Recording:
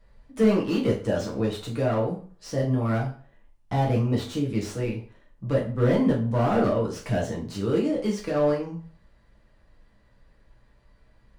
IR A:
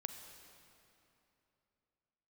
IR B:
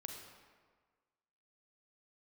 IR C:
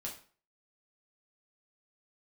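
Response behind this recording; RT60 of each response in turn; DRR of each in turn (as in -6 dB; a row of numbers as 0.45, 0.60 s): C; 3.0, 1.6, 0.40 s; 6.5, 2.0, -3.0 dB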